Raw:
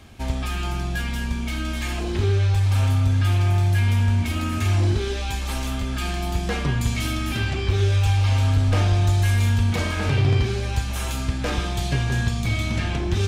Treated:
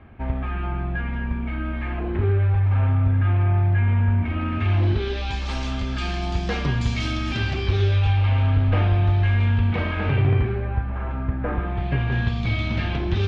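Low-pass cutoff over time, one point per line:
low-pass 24 dB/octave
4.21 s 2.1 kHz
5.50 s 5.5 kHz
7.59 s 5.5 kHz
8.31 s 2.9 kHz
10.06 s 2.9 kHz
10.80 s 1.7 kHz
11.54 s 1.7 kHz
12.40 s 4 kHz

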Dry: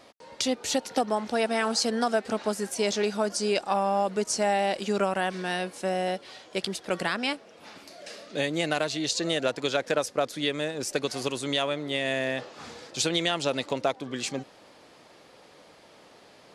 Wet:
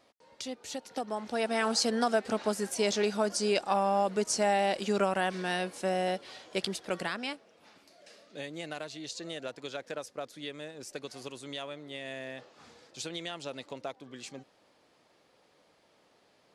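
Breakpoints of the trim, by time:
0.79 s -12 dB
1.66 s -2 dB
6.64 s -2 dB
7.79 s -12.5 dB

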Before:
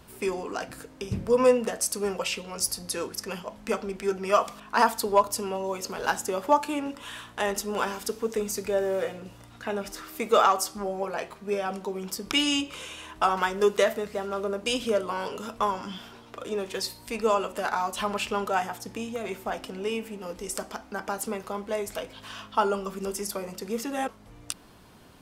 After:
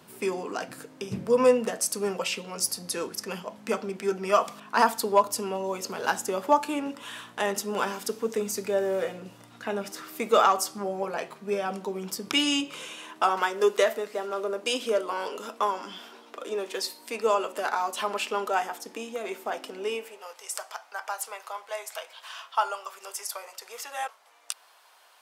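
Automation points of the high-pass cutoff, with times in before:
high-pass 24 dB/octave
12.61 s 130 Hz
13.50 s 270 Hz
19.90 s 270 Hz
20.30 s 680 Hz

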